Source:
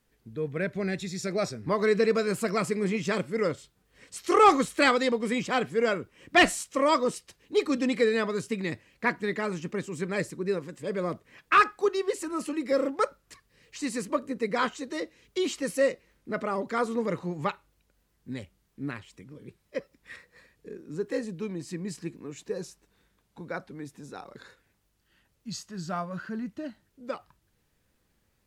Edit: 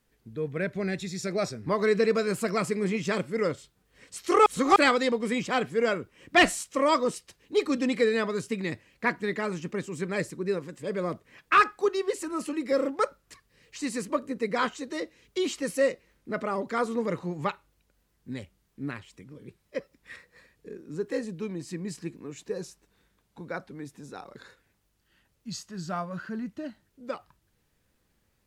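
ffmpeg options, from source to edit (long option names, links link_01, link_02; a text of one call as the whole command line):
ffmpeg -i in.wav -filter_complex "[0:a]asplit=3[link_01][link_02][link_03];[link_01]atrim=end=4.462[link_04];[link_02]atrim=start=4.458:end=4.762,asetpts=PTS-STARTPTS,areverse[link_05];[link_03]atrim=start=4.758[link_06];[link_04][link_05]acrossfade=duration=0.004:curve1=hsin:curve2=hsin[link_07];[link_07][link_06]acrossfade=duration=0.004:curve1=hsin:curve2=hsin" out.wav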